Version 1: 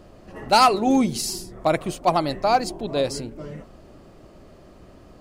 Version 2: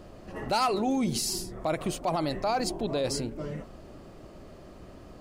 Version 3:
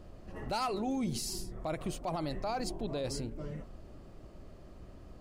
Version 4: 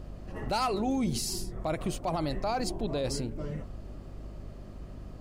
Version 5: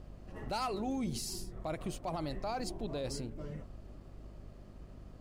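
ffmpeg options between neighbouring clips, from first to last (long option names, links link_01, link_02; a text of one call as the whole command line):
ffmpeg -i in.wav -af "alimiter=limit=-20dB:level=0:latency=1:release=54" out.wav
ffmpeg -i in.wav -af "lowshelf=frequency=110:gain=10.5,volume=-8dB" out.wav
ffmpeg -i in.wav -af "aeval=exprs='val(0)+0.00398*(sin(2*PI*50*n/s)+sin(2*PI*2*50*n/s)/2+sin(2*PI*3*50*n/s)/3+sin(2*PI*4*50*n/s)/4+sin(2*PI*5*50*n/s)/5)':channel_layout=same,volume=4.5dB" out.wav
ffmpeg -i in.wav -af "aeval=exprs='sgn(val(0))*max(abs(val(0))-0.00112,0)':channel_layout=same,volume=-6.5dB" out.wav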